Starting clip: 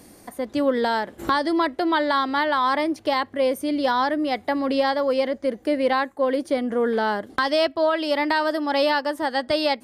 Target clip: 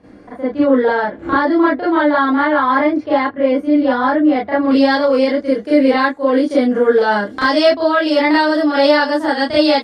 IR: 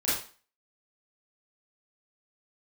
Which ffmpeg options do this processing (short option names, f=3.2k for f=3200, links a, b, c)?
-filter_complex "[0:a]asetnsamples=n=441:p=0,asendcmd='4.65 lowpass f 7400',lowpass=2.1k[a];[1:a]atrim=start_sample=2205,atrim=end_sample=3528[b];[a][b]afir=irnorm=-1:irlink=0,volume=-1.5dB"